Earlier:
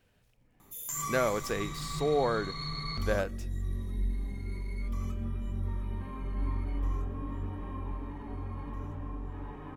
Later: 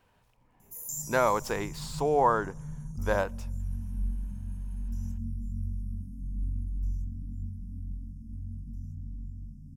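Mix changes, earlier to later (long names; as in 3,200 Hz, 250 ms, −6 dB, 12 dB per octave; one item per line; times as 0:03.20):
background: add linear-phase brick-wall band-stop 260–4,900 Hz
master: add parametric band 970 Hz +14 dB 0.65 octaves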